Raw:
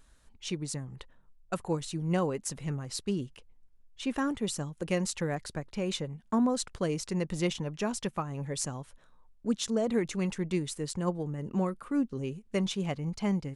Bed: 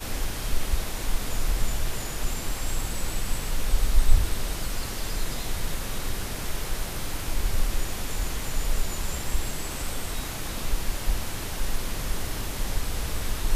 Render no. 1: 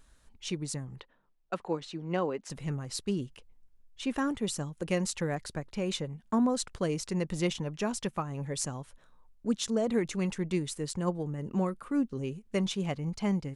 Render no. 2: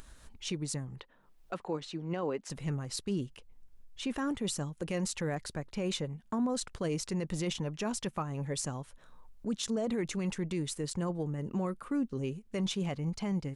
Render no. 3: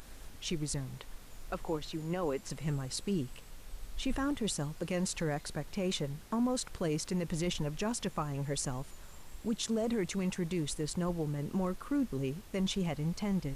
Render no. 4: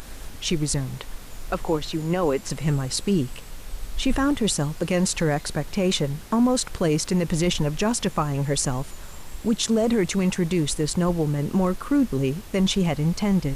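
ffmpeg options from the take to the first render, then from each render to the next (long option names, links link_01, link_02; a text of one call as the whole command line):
ffmpeg -i in.wav -filter_complex "[0:a]asettb=1/sr,asplit=3[link_01][link_02][link_03];[link_01]atrim=end=1.004[link_04];[link_02]atrim=start=1:end=2.5,asetpts=PTS-STARTPTS,afade=type=in:duration=0.004:curve=qsin,afade=type=out:start_time=1.496:duration=0.004:curve=qsin,acrossover=split=200 5200:gain=0.178 1 0.0794[link_05][link_06][link_07];[link_05][link_06][link_07]amix=inputs=3:normalize=0[link_08];[link_03]atrim=start=2.496[link_09];[link_04][link_08]acrossfade=duration=0.004:curve1=hsin:curve2=qsin[link_10];[link_10][link_09]acrossfade=duration=0.004:curve1=qsin:curve2=hsin" out.wav
ffmpeg -i in.wav -af "acompressor=mode=upward:threshold=-43dB:ratio=2.5,alimiter=level_in=1dB:limit=-24dB:level=0:latency=1:release=13,volume=-1dB" out.wav
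ffmpeg -i in.wav -i bed.wav -filter_complex "[1:a]volume=-22dB[link_01];[0:a][link_01]amix=inputs=2:normalize=0" out.wav
ffmpeg -i in.wav -af "volume=11.5dB" out.wav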